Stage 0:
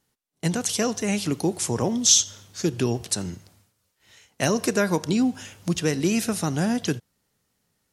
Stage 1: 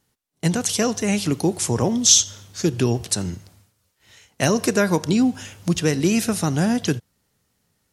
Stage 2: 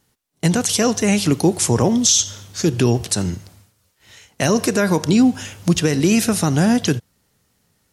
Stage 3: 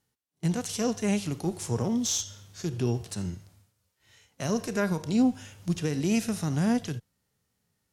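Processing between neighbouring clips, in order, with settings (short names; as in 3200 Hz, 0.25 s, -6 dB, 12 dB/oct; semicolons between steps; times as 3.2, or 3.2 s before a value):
bell 81 Hz +4 dB 1.5 oct; gain +3 dB
limiter -10.5 dBFS, peak gain reduction 9 dB; gain +5 dB
added harmonics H 2 -19 dB, 3 -27 dB, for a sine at -5 dBFS; harmonic-percussive split percussive -10 dB; gain -8.5 dB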